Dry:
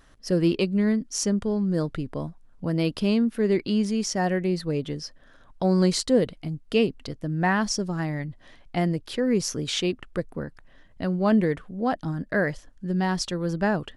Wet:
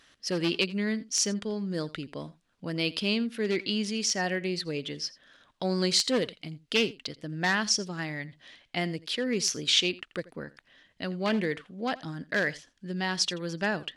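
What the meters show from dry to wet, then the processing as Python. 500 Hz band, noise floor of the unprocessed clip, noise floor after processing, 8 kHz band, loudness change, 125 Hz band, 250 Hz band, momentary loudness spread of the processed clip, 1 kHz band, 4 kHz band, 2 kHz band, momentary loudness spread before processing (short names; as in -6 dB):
-6.0 dB, -54 dBFS, -71 dBFS, +2.0 dB, -3.5 dB, -9.0 dB, -8.0 dB, 14 LU, -5.5 dB, +5.0 dB, +1.0 dB, 11 LU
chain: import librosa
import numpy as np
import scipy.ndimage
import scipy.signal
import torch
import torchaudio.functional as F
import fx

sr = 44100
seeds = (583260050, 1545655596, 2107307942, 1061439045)

p1 = np.minimum(x, 2.0 * 10.0 ** (-17.5 / 20.0) - x)
p2 = fx.weighting(p1, sr, curve='D')
p3 = p2 + fx.echo_single(p2, sr, ms=84, db=-20.0, dry=0)
y = p3 * 10.0 ** (-5.5 / 20.0)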